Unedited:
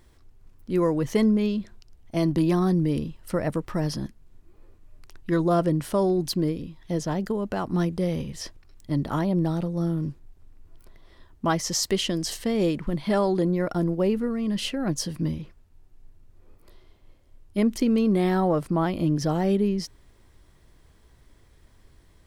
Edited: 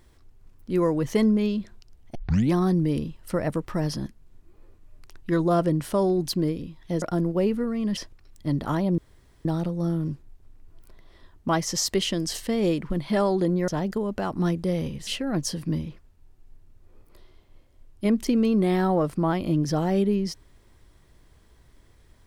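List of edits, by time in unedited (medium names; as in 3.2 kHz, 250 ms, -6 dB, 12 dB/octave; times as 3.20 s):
2.15 s: tape start 0.37 s
7.02–8.41 s: swap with 13.65–14.60 s
9.42 s: insert room tone 0.47 s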